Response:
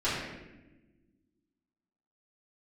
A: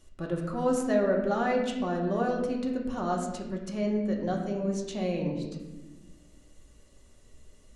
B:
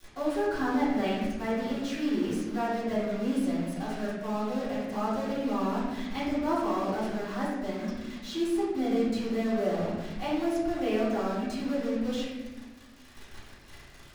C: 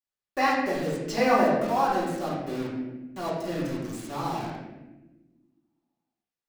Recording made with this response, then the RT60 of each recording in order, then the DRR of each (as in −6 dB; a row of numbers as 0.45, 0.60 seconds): B; 1.2, 1.1, 1.1 seconds; −0.5, −13.0, −9.0 decibels